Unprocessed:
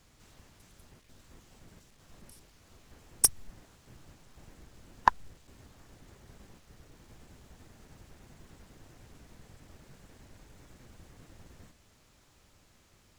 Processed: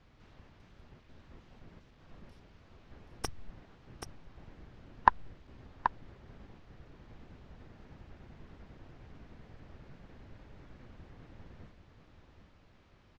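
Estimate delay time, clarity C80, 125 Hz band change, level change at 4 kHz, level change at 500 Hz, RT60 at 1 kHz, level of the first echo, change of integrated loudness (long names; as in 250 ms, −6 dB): 781 ms, no reverb audible, +2.0 dB, −9.0 dB, +1.5 dB, no reverb audible, −8.0 dB, −7.0 dB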